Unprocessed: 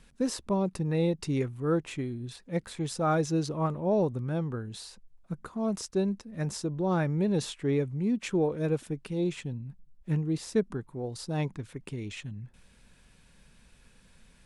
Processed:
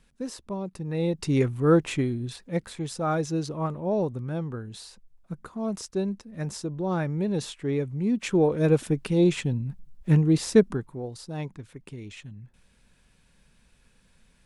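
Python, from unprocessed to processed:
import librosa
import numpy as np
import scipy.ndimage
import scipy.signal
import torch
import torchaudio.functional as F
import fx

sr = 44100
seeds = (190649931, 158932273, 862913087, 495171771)

y = fx.gain(x, sr, db=fx.line((0.74, -5.0), (1.47, 8.0), (2.01, 8.0), (2.86, 0.0), (7.73, 0.0), (8.87, 9.0), (10.58, 9.0), (11.23, -3.0)))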